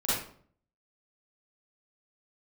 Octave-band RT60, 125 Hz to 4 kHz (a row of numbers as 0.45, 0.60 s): 0.75, 0.65, 0.60, 0.50, 0.40, 0.35 s